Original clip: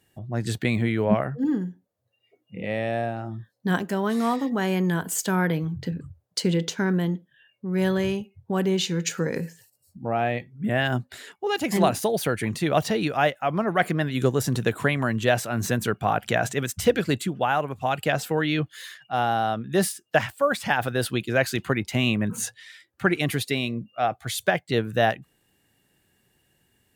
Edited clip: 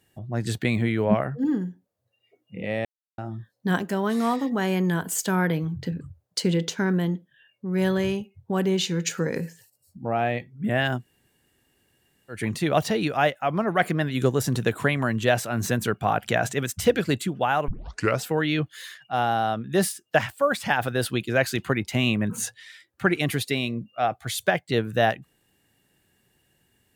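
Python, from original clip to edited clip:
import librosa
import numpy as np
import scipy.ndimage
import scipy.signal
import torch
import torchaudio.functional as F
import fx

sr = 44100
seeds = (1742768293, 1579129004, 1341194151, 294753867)

y = fx.edit(x, sr, fx.silence(start_s=2.85, length_s=0.33),
    fx.room_tone_fill(start_s=10.98, length_s=1.38, crossfade_s=0.16),
    fx.tape_start(start_s=17.68, length_s=0.53), tone=tone)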